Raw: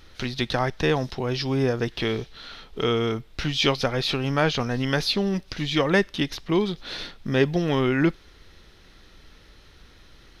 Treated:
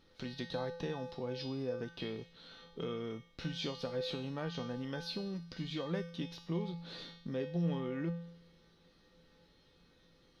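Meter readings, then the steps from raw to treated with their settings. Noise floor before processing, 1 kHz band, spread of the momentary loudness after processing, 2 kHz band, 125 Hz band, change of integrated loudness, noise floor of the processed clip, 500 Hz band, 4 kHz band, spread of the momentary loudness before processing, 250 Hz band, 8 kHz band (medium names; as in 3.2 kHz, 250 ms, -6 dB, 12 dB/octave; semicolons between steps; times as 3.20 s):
-52 dBFS, -18.0 dB, 8 LU, -20.5 dB, -13.5 dB, -15.5 dB, -67 dBFS, -15.0 dB, -17.0 dB, 7 LU, -14.0 dB, -19.0 dB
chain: graphic EQ 125/250/500/1000/4000 Hz +6/+10/+8/+5/+6 dB; compression 3:1, threshold -16 dBFS, peak gain reduction 9.5 dB; feedback comb 170 Hz, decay 0.7 s, harmonics odd, mix 90%; trim -3.5 dB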